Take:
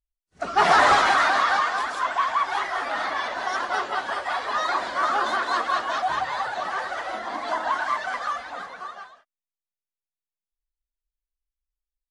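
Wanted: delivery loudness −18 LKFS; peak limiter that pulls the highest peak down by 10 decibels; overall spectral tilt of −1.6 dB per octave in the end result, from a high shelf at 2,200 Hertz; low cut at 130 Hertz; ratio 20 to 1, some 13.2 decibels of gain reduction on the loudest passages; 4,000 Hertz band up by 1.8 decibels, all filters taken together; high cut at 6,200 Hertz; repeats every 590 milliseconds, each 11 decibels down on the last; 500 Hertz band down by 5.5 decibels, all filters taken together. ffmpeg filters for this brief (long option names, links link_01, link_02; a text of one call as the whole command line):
ffmpeg -i in.wav -af "highpass=130,lowpass=6200,equalizer=frequency=500:width_type=o:gain=-8,highshelf=frequency=2200:gain=-4,equalizer=frequency=4000:width_type=o:gain=6.5,acompressor=threshold=-28dB:ratio=20,alimiter=level_in=6dB:limit=-24dB:level=0:latency=1,volume=-6dB,aecho=1:1:590|1180|1770:0.282|0.0789|0.0221,volume=19.5dB" out.wav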